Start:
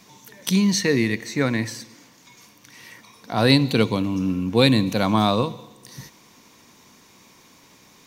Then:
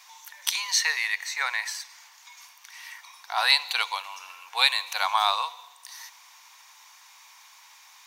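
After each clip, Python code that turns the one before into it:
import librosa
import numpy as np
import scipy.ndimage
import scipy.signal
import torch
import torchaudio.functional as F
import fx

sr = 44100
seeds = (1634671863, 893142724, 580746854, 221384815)

y = scipy.signal.sosfilt(scipy.signal.ellip(4, 1.0, 70, 820.0, 'highpass', fs=sr, output='sos'), x)
y = F.gain(torch.from_numpy(y), 2.0).numpy()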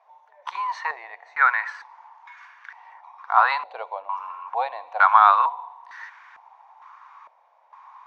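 y = fx.filter_held_lowpass(x, sr, hz=2.2, low_hz=600.0, high_hz=1600.0)
y = F.gain(torch.from_numpy(y), 3.0).numpy()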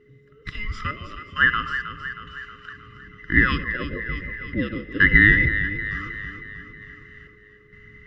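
y = fx.band_invert(x, sr, width_hz=1000)
y = fx.echo_alternate(y, sr, ms=158, hz=920.0, feedback_pct=75, wet_db=-7.5)
y = y + 10.0 ** (-55.0 / 20.0) * np.sin(2.0 * np.pi * 420.0 * np.arange(len(y)) / sr)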